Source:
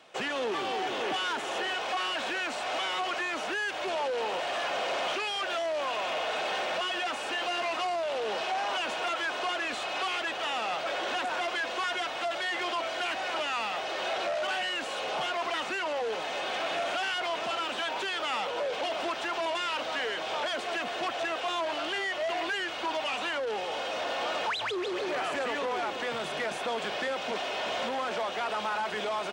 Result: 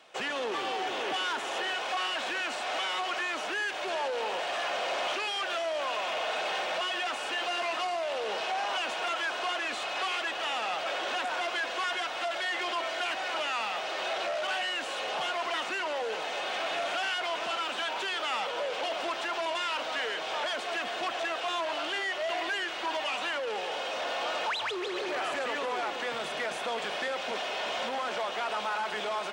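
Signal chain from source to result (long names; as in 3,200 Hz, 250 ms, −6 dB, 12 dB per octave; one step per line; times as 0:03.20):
low-shelf EQ 330 Hz −7 dB
on a send: echo with a time of its own for lows and highs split 1,400 Hz, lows 97 ms, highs 377 ms, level −12.5 dB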